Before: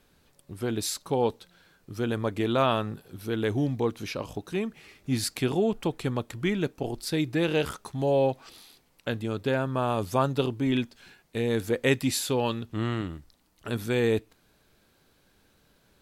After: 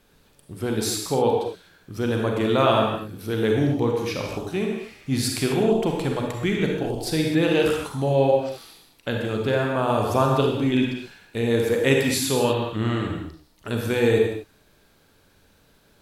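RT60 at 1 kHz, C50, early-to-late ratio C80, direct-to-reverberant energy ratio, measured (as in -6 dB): n/a, 1.0 dB, 3.5 dB, 0.0 dB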